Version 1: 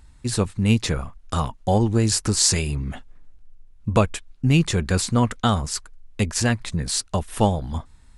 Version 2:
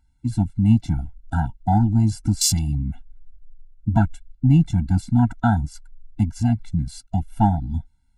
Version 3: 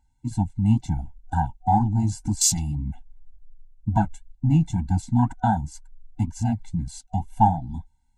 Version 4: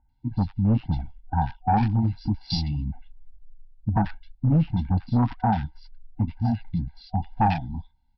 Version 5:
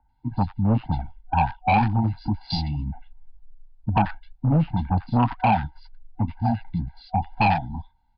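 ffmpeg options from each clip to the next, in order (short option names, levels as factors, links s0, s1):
-af "afwtdn=0.0708,afftfilt=real='re*eq(mod(floor(b*sr/1024/330),2),0)':imag='im*eq(mod(floor(b*sr/1024/330),2),0)':win_size=1024:overlap=0.75,volume=1.41"
-af "superequalizer=9b=2.51:10b=0.282:15b=2,flanger=delay=1.1:depth=7.6:regen=-50:speed=2:shape=sinusoidal"
-filter_complex "[0:a]aresample=11025,asoftclip=type=hard:threshold=0.178,aresample=44100,acrossover=split=1700[s0][s1];[s1]adelay=90[s2];[s0][s2]amix=inputs=2:normalize=0"
-filter_complex "[0:a]acrossover=split=110|670|1400[s0][s1][s2][s3];[s2]aeval=exprs='0.133*sin(PI/2*2.51*val(0)/0.133)':c=same[s4];[s0][s1][s4][s3]amix=inputs=4:normalize=0,aresample=11025,aresample=44100"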